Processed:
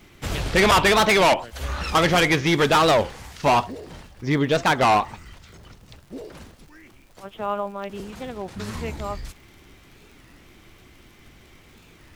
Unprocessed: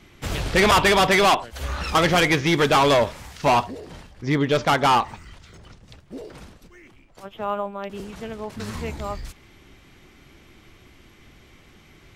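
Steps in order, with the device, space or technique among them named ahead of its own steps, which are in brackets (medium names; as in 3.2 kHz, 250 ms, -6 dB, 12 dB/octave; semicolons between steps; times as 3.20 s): warped LP (warped record 33 1/3 rpm, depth 250 cents; crackle -42 dBFS; pink noise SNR 38 dB)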